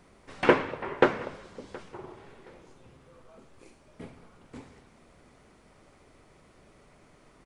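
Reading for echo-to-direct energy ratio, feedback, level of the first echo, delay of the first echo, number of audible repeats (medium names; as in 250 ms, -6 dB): -21.5 dB, 25%, -22.0 dB, 721 ms, 2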